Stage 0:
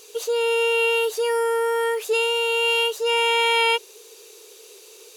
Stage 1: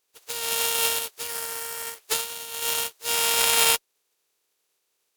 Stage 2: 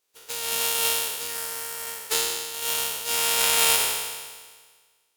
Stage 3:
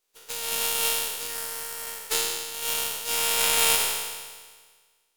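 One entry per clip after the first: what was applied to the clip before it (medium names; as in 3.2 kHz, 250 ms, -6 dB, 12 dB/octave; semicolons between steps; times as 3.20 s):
spectral contrast reduction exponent 0.28; Chebyshev shaper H 3 -17 dB, 7 -24 dB, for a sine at -6 dBFS; upward expansion 2.5:1, over -34 dBFS; trim +5.5 dB
spectral sustain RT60 1.56 s; trim -2.5 dB
partial rectifier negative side -3 dB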